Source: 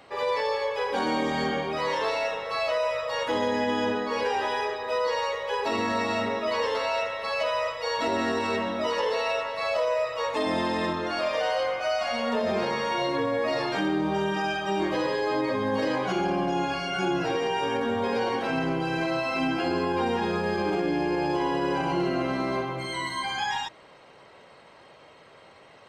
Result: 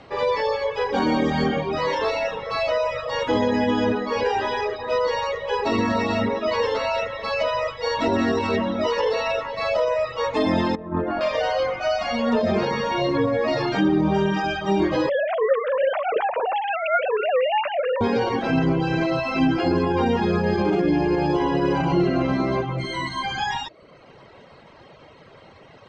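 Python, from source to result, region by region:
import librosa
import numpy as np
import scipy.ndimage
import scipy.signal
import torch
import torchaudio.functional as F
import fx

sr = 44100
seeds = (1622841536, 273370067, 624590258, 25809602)

y = fx.chain(x, sr, fx.lowpass(hz=1300.0, slope=12),
    fx.over_compress(threshold_db=-31.0, ratio=-0.5), at=(10.75, 11.21))
y = fx.chain(y, sr, fx.sine_speech(),
    fx.hum_notches(base_hz=60, count=8), at=(15.09, 18.01))
y = scipy.signal.sosfilt(scipy.signal.butter(4, 6700.0, 'lowpass', fs=sr, output='sos'), y)
y = fx.low_shelf(y, sr, hz=290.0, db=11.0)
y = fx.dereverb_blind(y, sr, rt60_s=0.68)
y = F.gain(torch.from_numpy(y), 3.5).numpy()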